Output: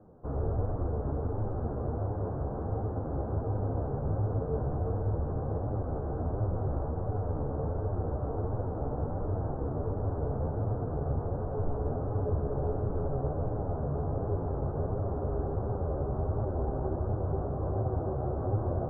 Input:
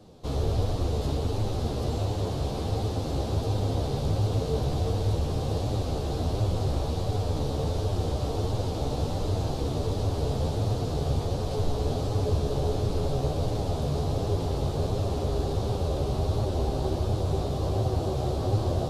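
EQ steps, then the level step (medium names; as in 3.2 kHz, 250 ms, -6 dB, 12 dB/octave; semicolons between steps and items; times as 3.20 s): elliptic low-pass 1.5 kHz, stop band 50 dB; -3.5 dB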